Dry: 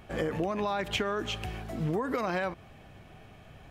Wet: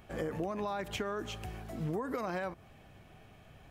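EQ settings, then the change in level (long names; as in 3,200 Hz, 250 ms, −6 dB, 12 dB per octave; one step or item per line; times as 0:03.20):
high-shelf EQ 9,000 Hz +5.5 dB
dynamic equaliser 3,000 Hz, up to −5 dB, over −49 dBFS, Q 0.97
−5.0 dB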